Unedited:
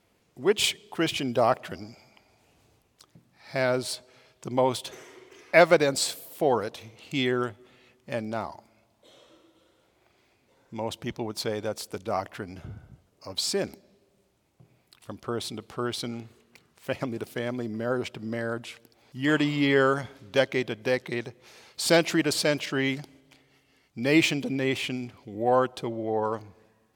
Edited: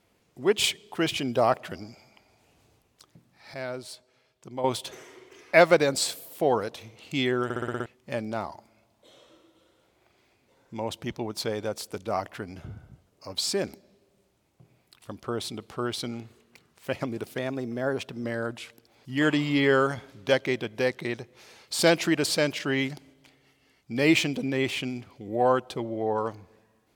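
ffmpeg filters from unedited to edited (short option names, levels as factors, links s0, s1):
-filter_complex "[0:a]asplit=12[s0][s1][s2][s3][s4][s5][s6][s7][s8][s9][s10][s11];[s0]atrim=end=3.542[s12];[s1]atrim=start=3.538:end=4.642,asetpts=PTS-STARTPTS,volume=0.335[s13];[s2]atrim=start=4.638:end=7.502[s14];[s3]atrim=start=7.438:end=7.502[s15];[s4]atrim=start=7.438:end=7.502[s16];[s5]atrim=start=7.438:end=7.502[s17];[s6]atrim=start=7.438:end=7.502[s18];[s7]atrim=start=7.438:end=7.502[s19];[s8]atrim=start=7.438:end=7.502[s20];[s9]atrim=start=7.858:end=17.384[s21];[s10]atrim=start=17.38:end=18.31,asetpts=PTS-STARTPTS,asetrate=47628,aresample=44100[s22];[s11]atrim=start=18.306[s23];[s12][s13]acrossfade=d=0.004:c1=hsin:c2=hsin[s24];[s24][s14]acrossfade=d=0.004:c1=hsin:c2=hsin[s25];[s25][s15]acrossfade=d=0.004:c1=hsin:c2=hsin[s26];[s26][s16]acrossfade=d=0.004:c1=hsin:c2=hsin[s27];[s27][s17]acrossfade=d=0.004:c1=hsin:c2=hsin[s28];[s28][s18]acrossfade=d=0.004:c1=hsin:c2=hsin[s29];[s29][s19]acrossfade=d=0.004:c1=hsin:c2=hsin[s30];[s30][s20]acrossfade=d=0.004:c1=hsin:c2=hsin[s31];[s31][s21]acrossfade=d=0.004:c1=hsin:c2=hsin[s32];[s32][s22]acrossfade=d=0.004:c1=hsin:c2=hsin[s33];[s33][s23]acrossfade=d=0.004:c1=hsin:c2=hsin"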